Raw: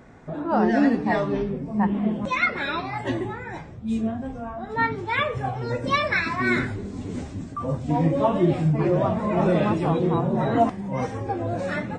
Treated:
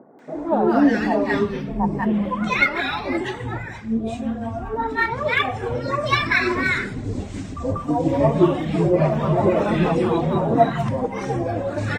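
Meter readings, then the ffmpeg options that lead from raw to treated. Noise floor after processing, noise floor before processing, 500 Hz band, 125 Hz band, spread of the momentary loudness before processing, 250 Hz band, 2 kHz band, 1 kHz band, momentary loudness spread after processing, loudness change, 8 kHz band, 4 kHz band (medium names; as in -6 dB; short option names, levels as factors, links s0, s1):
-33 dBFS, -38 dBFS, +4.0 dB, +1.5 dB, 12 LU, +2.5 dB, +4.0 dB, +2.5 dB, 10 LU, +3.0 dB, +5.0 dB, +5.0 dB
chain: -filter_complex "[0:a]bandreject=f=60:t=h:w=6,bandreject=f=120:t=h:w=6,bandreject=f=180:t=h:w=6,bandreject=f=240:t=h:w=6,aphaser=in_gain=1:out_gain=1:delay=4.5:decay=0.4:speed=1.9:type=triangular,acrossover=split=200|1000[s0][s1][s2];[s2]adelay=190[s3];[s0]adelay=350[s4];[s4][s1][s3]amix=inputs=3:normalize=0,volume=1.58"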